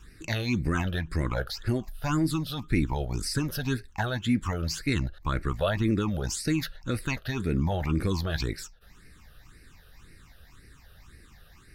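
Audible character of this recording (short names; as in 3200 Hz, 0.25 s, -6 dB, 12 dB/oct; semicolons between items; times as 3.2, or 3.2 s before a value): phasing stages 8, 1.9 Hz, lowest notch 280–1000 Hz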